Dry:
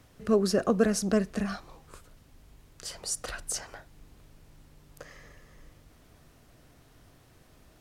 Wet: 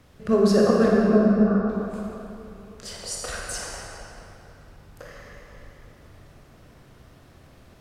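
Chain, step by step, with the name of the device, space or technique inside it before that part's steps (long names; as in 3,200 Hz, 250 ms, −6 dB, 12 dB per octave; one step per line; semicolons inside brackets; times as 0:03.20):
0:00.88–0:01.69: Butterworth low-pass 1,500 Hz 72 dB per octave
swimming-pool hall (convolution reverb RT60 3.2 s, pre-delay 19 ms, DRR −3 dB; high-shelf EQ 5,600 Hz −6.5 dB)
level +2.5 dB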